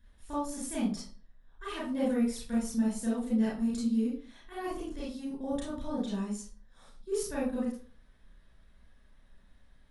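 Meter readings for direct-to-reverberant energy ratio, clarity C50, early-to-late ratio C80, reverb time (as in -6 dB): -6.0 dB, 2.0 dB, 8.5 dB, 0.40 s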